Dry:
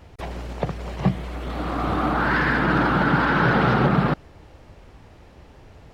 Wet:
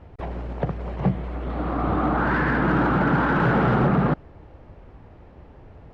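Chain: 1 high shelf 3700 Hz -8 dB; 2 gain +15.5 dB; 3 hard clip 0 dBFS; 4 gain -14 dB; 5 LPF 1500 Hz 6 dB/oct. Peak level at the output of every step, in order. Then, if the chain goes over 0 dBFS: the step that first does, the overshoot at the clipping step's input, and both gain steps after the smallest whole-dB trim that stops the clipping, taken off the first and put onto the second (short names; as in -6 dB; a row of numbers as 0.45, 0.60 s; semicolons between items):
-7.0, +8.5, 0.0, -14.0, -14.0 dBFS; step 2, 8.5 dB; step 2 +6.5 dB, step 4 -5 dB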